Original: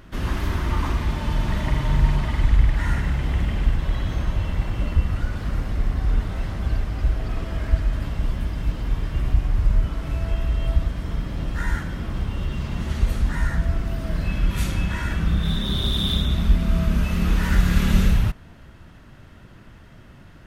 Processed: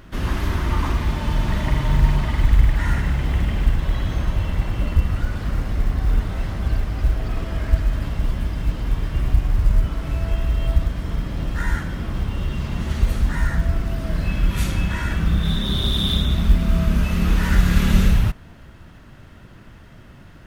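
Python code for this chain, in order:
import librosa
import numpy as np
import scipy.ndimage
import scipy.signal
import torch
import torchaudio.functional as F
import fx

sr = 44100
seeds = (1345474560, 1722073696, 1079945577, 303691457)

y = fx.quant_companded(x, sr, bits=8)
y = F.gain(torch.from_numpy(y), 2.0).numpy()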